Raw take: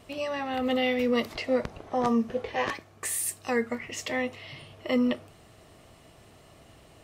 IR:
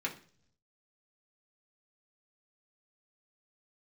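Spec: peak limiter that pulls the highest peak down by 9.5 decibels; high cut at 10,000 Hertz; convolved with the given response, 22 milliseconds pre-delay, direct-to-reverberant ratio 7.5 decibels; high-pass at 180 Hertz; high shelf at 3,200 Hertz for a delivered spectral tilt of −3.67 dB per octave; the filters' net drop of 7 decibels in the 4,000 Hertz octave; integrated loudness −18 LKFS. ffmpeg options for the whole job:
-filter_complex "[0:a]highpass=180,lowpass=10000,highshelf=frequency=3200:gain=-5.5,equalizer=frequency=4000:width_type=o:gain=-7,alimiter=level_in=0.5dB:limit=-24dB:level=0:latency=1,volume=-0.5dB,asplit=2[link_01][link_02];[1:a]atrim=start_sample=2205,adelay=22[link_03];[link_02][link_03]afir=irnorm=-1:irlink=0,volume=-11.5dB[link_04];[link_01][link_04]amix=inputs=2:normalize=0,volume=16dB"

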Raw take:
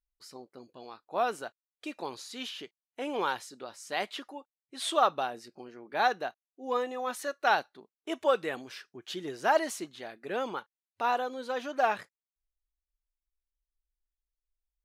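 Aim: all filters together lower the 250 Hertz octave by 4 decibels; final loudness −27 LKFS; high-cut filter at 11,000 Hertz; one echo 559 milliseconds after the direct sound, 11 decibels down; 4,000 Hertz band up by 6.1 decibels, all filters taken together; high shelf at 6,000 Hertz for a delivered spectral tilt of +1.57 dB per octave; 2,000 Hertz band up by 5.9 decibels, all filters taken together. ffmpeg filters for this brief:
ffmpeg -i in.wav -af "lowpass=11000,equalizer=frequency=250:width_type=o:gain=-5.5,equalizer=frequency=2000:width_type=o:gain=7.5,equalizer=frequency=4000:width_type=o:gain=6,highshelf=frequency=6000:gain=-3.5,aecho=1:1:559:0.282,volume=3.5dB" out.wav

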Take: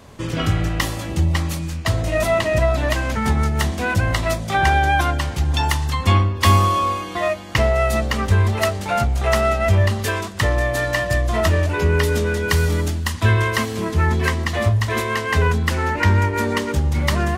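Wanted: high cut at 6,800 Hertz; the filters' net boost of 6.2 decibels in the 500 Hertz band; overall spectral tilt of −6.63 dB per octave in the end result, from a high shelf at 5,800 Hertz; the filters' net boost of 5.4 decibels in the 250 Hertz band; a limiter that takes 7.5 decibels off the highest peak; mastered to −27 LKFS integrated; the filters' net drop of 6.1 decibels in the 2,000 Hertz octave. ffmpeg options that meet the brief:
ffmpeg -i in.wav -af "lowpass=6800,equalizer=frequency=250:width_type=o:gain=5,equalizer=frequency=500:width_type=o:gain=8,equalizer=frequency=2000:width_type=o:gain=-7.5,highshelf=frequency=5800:gain=-7.5,volume=-8.5dB,alimiter=limit=-17dB:level=0:latency=1" out.wav

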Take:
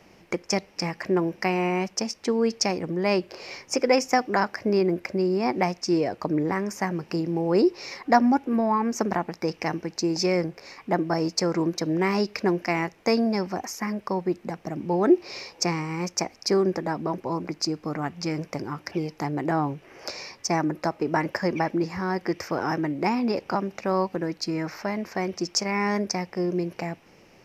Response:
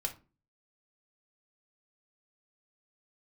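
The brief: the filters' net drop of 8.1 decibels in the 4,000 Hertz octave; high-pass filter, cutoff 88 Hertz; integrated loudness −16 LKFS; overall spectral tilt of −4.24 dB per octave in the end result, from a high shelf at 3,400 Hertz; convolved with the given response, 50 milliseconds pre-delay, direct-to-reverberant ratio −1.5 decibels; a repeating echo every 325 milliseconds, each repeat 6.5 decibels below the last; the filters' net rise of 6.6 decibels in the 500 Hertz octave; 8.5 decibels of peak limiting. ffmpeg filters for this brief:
-filter_complex "[0:a]highpass=88,equalizer=frequency=500:width_type=o:gain=9,highshelf=frequency=3400:gain=-6.5,equalizer=frequency=4000:width_type=o:gain=-5.5,alimiter=limit=-10.5dB:level=0:latency=1,aecho=1:1:325|650|975|1300|1625|1950:0.473|0.222|0.105|0.0491|0.0231|0.0109,asplit=2[link_01][link_02];[1:a]atrim=start_sample=2205,adelay=50[link_03];[link_02][link_03]afir=irnorm=-1:irlink=0,volume=0dB[link_04];[link_01][link_04]amix=inputs=2:normalize=0,volume=3dB"

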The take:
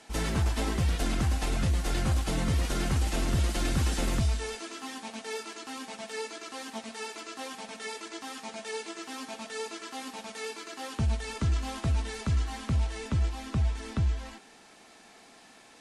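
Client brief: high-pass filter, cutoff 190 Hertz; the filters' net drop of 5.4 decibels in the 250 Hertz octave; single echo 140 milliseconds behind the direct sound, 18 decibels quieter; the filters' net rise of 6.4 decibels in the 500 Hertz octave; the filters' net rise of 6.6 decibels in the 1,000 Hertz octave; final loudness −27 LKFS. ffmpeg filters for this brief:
ffmpeg -i in.wav -af "highpass=190,equalizer=frequency=250:width_type=o:gain=-8.5,equalizer=frequency=500:width_type=o:gain=9,equalizer=frequency=1000:width_type=o:gain=6,aecho=1:1:140:0.126,volume=6.5dB" out.wav

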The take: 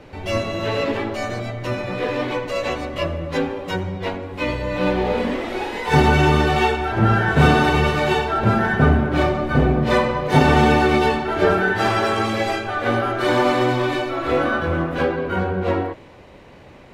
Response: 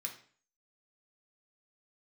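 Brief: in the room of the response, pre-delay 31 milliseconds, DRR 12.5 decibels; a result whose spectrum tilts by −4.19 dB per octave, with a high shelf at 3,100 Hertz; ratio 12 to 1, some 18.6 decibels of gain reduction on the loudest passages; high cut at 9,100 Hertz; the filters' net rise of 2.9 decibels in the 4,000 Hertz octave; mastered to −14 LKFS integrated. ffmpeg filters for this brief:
-filter_complex "[0:a]lowpass=9100,highshelf=frequency=3100:gain=-6.5,equalizer=frequency=4000:width_type=o:gain=8.5,acompressor=threshold=-29dB:ratio=12,asplit=2[link_01][link_02];[1:a]atrim=start_sample=2205,adelay=31[link_03];[link_02][link_03]afir=irnorm=-1:irlink=0,volume=-11dB[link_04];[link_01][link_04]amix=inputs=2:normalize=0,volume=18.5dB"

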